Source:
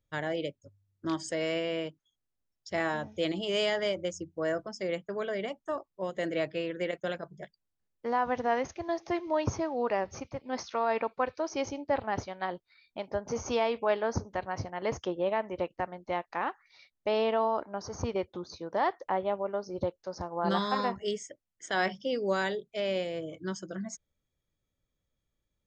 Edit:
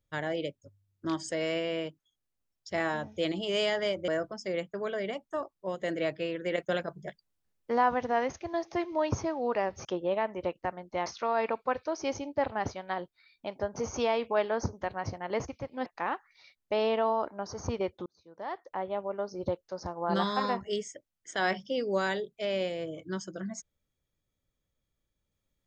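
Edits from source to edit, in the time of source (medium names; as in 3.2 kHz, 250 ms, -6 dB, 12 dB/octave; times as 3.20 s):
4.08–4.43 s: delete
6.87–8.29 s: gain +3.5 dB
10.20–10.58 s: swap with 15.00–16.21 s
18.41–19.66 s: fade in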